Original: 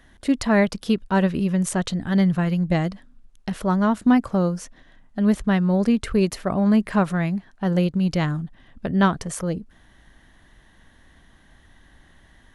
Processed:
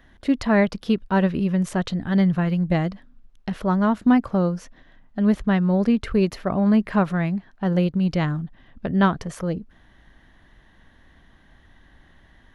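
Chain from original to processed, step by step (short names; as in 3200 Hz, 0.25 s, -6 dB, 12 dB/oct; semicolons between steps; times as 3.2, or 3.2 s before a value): bell 8900 Hz -12.5 dB 1.1 oct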